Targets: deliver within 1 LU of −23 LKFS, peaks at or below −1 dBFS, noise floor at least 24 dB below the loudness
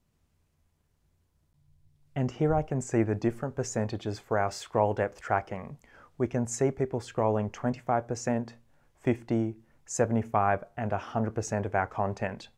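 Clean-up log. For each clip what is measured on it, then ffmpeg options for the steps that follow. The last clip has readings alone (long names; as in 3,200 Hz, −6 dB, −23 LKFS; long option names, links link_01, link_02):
integrated loudness −30.0 LKFS; sample peak −10.5 dBFS; target loudness −23.0 LKFS
→ -af "volume=7dB"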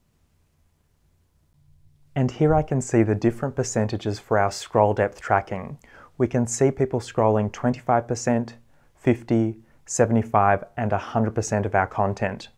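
integrated loudness −23.0 LKFS; sample peak −3.5 dBFS; background noise floor −65 dBFS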